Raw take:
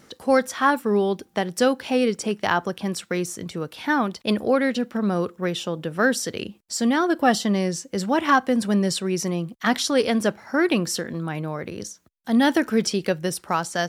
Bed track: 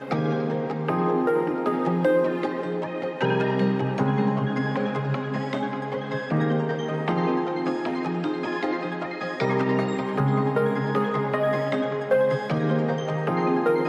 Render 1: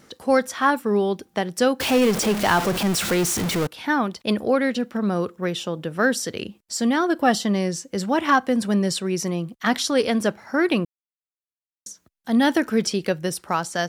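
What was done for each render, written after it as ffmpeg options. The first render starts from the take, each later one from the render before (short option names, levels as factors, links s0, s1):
-filter_complex "[0:a]asettb=1/sr,asplit=3[s0][s1][s2];[s0]atrim=end=1.804[s3];[s1]atrim=start=1.8:end=3.67,asetpts=PTS-STARTPTS,afade=t=in:d=0.004:c=qsin,afade=t=out:st=1.866:d=0.004:c=qsin,aeval=exprs='val(0)+0.5*0.0944*sgn(val(0))':c=same[s4];[s2]atrim=start=3.666[s5];[s3][s4]acrossfade=d=0.004:c1=hsin:c2=qsin[s6];[s6][s5]acrossfade=d=0.004:c1=qsin:c2=hsin,asplit=3[s7][s8][s9];[s7]atrim=end=10.85,asetpts=PTS-STARTPTS,afade=t=out:st=10.846:d=0.004:c=hsin[s10];[s8]atrim=start=10.85:end=11.86,asetpts=PTS-STARTPTS,volume=0[s11];[s9]atrim=start=11.86,asetpts=PTS-STARTPTS,afade=t=in:d=0.004:c=hsin[s12];[s10][s11][s12]concat=n=3:v=0:a=1"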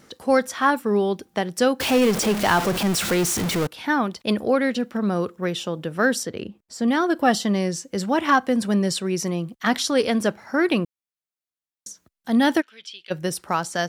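-filter_complex "[0:a]asettb=1/sr,asplit=3[s0][s1][s2];[s0]atrim=end=6.234[s3];[s1]atrim=start=6.23:end=6.88,asetpts=PTS-STARTPTS,afade=t=in:d=0.004:c=qsin,afade=t=out:st=0.646:d=0.004:c=qsin,highshelf=f=2400:g=-11.5[s4];[s2]atrim=start=6.876[s5];[s3][s4]acrossfade=d=0.004:c1=hsin:c2=qsin[s6];[s6][s5]acrossfade=d=0.004:c1=qsin:c2=hsin,asplit=3[s7][s8][s9];[s7]afade=t=out:st=12.6:d=0.02[s10];[s8]bandpass=f=3200:t=q:w=4.5,afade=t=in:st=12.6:d=0.02,afade=t=out:st=13.1:d=0.02[s11];[s9]afade=t=in:st=13.1:d=0.02[s12];[s10][s11][s12]amix=inputs=3:normalize=0"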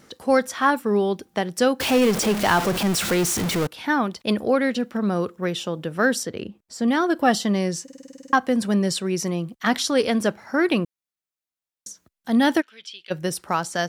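-filter_complex "[0:a]asplit=11[s0][s1][s2][s3][s4][s5][s6][s7][s8][s9][s10];[s0]atrim=end=7.882[s11];[s1]atrim=start=7.828:end=7.882[s12];[s2]atrim=start=7.828:end=7.882[s13];[s3]atrim=start=7.828:end=7.882[s14];[s4]atrim=start=7.828:end=7.882[s15];[s5]atrim=start=7.828:end=7.882[s16];[s6]atrim=start=7.828:end=7.882[s17];[s7]atrim=start=7.828:end=7.882[s18];[s8]atrim=start=7.828:end=7.882[s19];[s9]atrim=start=7.828:end=7.882[s20];[s10]atrim=start=8.328[s21];[s11][s12]acrossfade=d=0.004:c1=hsin:c2=hsin[s22];[s22][s13]acrossfade=d=0.004:c1=hsin:c2=hsin[s23];[s23][s14]acrossfade=d=0.004:c1=hsin:c2=hsin[s24];[s24][s15]acrossfade=d=0.004:c1=hsin:c2=hsin[s25];[s25][s16]acrossfade=d=0.004:c1=hsin:c2=hsin[s26];[s26][s17]acrossfade=d=0.004:c1=hsin:c2=hsin[s27];[s27][s18]acrossfade=d=0.004:c1=hsin:c2=hsin[s28];[s28][s19]acrossfade=d=0.004:c1=hsin:c2=hsin[s29];[s29][s20]acrossfade=d=0.004:c1=hsin:c2=hsin[s30];[s30][s21]acrossfade=d=0.004:c1=hsin:c2=hsin"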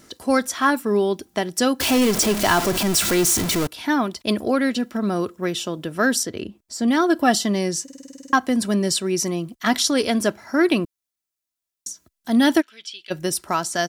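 -af "bass=f=250:g=3,treble=f=4000:g=6,aecho=1:1:3:0.38"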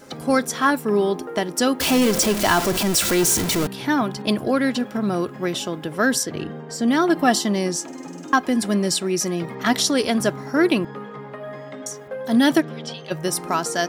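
-filter_complex "[1:a]volume=0.282[s0];[0:a][s0]amix=inputs=2:normalize=0"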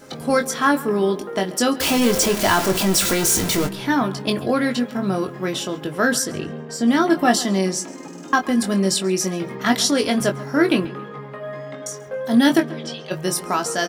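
-filter_complex "[0:a]asplit=2[s0][s1];[s1]adelay=21,volume=0.501[s2];[s0][s2]amix=inputs=2:normalize=0,asplit=2[s3][s4];[s4]adelay=137,lowpass=f=3700:p=1,volume=0.126,asplit=2[s5][s6];[s6]adelay=137,lowpass=f=3700:p=1,volume=0.4,asplit=2[s7][s8];[s8]adelay=137,lowpass=f=3700:p=1,volume=0.4[s9];[s3][s5][s7][s9]amix=inputs=4:normalize=0"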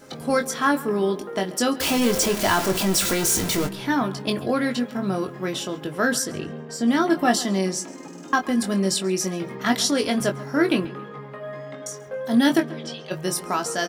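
-af "volume=0.708"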